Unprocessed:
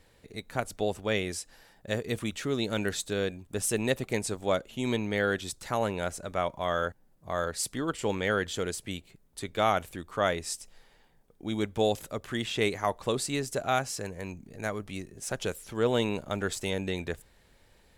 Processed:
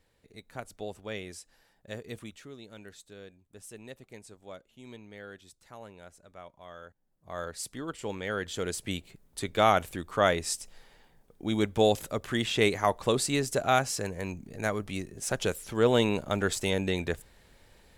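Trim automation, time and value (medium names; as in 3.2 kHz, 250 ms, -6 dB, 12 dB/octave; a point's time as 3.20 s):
2.18 s -9 dB
2.59 s -18 dB
6.86 s -18 dB
7.39 s -6 dB
8.27 s -6 dB
8.90 s +3 dB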